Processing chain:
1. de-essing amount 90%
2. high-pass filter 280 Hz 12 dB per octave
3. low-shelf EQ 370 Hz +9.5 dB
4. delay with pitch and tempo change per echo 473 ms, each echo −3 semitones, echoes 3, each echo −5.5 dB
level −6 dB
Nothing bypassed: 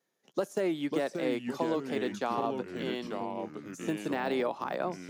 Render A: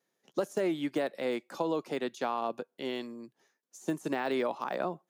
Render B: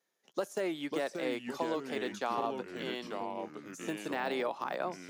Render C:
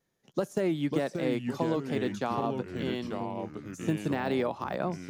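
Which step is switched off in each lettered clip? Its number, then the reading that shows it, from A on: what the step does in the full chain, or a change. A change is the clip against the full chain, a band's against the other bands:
4, change in momentary loudness spread +2 LU
3, 125 Hz band −6.5 dB
2, 125 Hz band +9.0 dB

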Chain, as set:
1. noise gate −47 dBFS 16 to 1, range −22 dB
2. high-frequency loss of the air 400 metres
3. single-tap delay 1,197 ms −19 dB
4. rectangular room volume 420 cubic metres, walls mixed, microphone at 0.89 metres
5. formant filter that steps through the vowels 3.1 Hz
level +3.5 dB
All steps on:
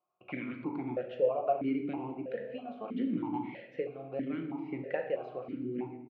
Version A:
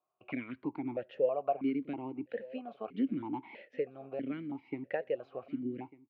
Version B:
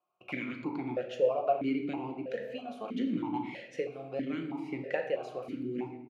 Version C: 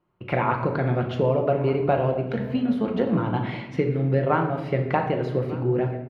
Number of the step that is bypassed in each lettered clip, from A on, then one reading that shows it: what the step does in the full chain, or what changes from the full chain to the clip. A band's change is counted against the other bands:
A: 4, 125 Hz band −2.0 dB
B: 2, 2 kHz band +3.5 dB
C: 5, 125 Hz band +11.0 dB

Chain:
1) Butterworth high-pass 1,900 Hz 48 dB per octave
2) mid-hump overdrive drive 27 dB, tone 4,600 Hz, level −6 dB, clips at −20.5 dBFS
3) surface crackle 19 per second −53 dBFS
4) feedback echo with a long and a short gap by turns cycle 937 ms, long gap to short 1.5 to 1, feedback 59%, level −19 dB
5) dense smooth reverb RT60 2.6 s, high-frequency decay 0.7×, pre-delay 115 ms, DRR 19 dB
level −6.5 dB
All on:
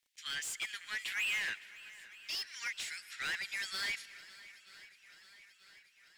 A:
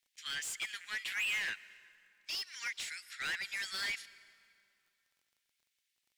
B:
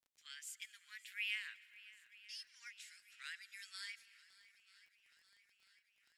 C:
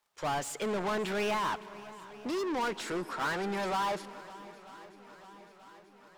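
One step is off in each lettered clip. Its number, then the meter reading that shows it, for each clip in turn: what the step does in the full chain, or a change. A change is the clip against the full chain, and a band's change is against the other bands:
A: 4, echo-to-direct ratio −13.5 dB to −19.0 dB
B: 2, change in crest factor +10.0 dB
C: 1, 500 Hz band +29.0 dB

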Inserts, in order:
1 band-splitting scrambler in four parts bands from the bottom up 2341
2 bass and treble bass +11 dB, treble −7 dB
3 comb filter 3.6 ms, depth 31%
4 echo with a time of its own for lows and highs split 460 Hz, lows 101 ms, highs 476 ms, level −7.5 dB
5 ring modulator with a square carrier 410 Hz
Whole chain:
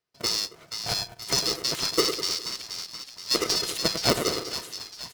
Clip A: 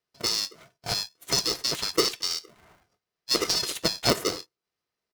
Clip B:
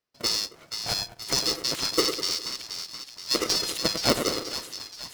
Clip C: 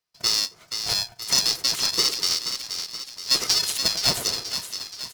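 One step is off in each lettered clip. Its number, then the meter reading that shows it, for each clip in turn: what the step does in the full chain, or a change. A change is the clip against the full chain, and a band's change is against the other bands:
4, change in momentary loudness spread −3 LU
3, 125 Hz band −1.5 dB
2, change in crest factor −2.0 dB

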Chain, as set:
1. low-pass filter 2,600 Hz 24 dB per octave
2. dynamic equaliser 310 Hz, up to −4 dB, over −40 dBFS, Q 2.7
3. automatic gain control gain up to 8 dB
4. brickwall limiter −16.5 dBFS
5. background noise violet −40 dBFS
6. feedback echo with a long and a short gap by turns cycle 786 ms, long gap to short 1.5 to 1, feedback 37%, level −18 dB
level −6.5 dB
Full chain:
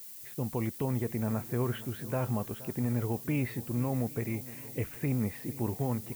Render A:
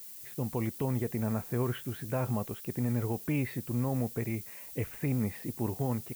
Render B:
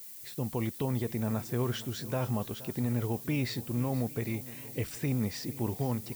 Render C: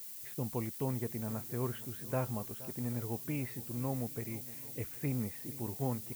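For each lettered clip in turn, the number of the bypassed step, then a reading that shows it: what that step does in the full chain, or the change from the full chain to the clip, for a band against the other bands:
6, echo-to-direct ratio −16.0 dB to none audible
1, 4 kHz band +9.0 dB
3, 8 kHz band +5.0 dB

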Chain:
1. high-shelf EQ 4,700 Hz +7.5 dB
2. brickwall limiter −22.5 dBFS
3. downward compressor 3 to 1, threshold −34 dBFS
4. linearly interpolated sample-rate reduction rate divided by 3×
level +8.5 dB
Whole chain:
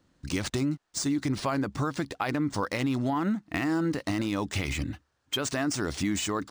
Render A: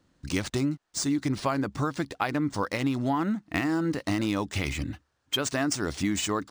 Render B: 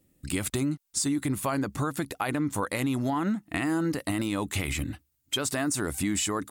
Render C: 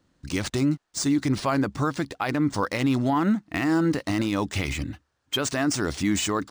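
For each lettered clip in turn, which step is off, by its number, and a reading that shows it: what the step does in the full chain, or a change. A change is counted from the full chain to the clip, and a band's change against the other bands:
2, average gain reduction 2.0 dB
4, 8 kHz band +4.5 dB
3, change in crest factor −4.5 dB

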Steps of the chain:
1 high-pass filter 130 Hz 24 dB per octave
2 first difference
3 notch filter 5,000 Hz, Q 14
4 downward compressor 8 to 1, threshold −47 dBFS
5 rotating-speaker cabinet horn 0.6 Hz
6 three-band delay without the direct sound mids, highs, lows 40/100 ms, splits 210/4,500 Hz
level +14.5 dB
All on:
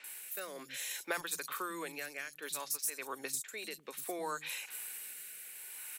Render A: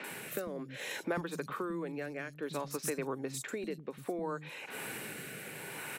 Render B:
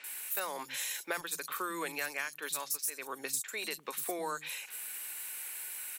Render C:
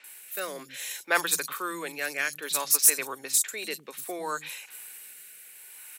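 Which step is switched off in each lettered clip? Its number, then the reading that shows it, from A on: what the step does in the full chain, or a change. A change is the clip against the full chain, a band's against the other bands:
2, 125 Hz band +16.5 dB
5, change in momentary loudness spread −3 LU
4, average gain reduction 5.5 dB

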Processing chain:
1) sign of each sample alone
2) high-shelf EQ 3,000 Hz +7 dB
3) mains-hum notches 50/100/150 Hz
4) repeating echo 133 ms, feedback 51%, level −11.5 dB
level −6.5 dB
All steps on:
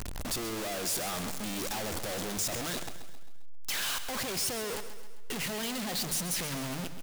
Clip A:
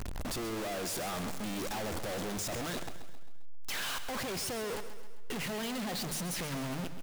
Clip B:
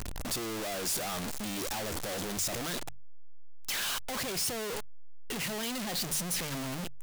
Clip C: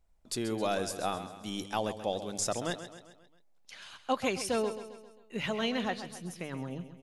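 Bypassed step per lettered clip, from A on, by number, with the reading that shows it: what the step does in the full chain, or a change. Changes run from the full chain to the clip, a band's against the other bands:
2, 8 kHz band −5.5 dB
4, echo-to-direct ratio −10.0 dB to none audible
1, change in crest factor +8.0 dB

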